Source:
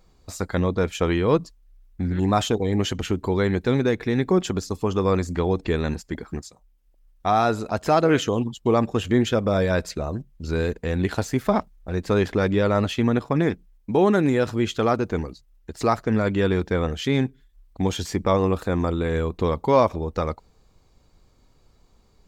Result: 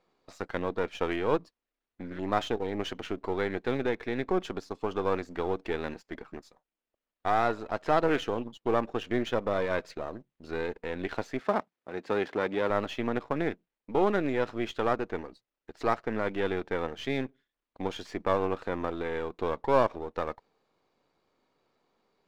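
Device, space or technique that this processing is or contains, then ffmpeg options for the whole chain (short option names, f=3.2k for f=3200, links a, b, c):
crystal radio: -filter_complex "[0:a]highpass=310,lowpass=3.3k,aeval=exprs='if(lt(val(0),0),0.447*val(0),val(0))':c=same,asettb=1/sr,asplit=3[a][b][c];[a]atrim=end=11.404[d];[b]atrim=start=11.4:end=12.7,asetpts=PTS-STARTPTS,afade=t=in:d=0.004:c=qsin,afade=t=out:st=1.296:d=0.004:c=qsin,highpass=130[e];[c]atrim=start=12.696[f];[d][e]acrossfade=d=0.004:c1=hsin:c2=qsin[g];[g][f]acrossfade=d=0.004:c1=qsin:c2=hsin,volume=-3.5dB"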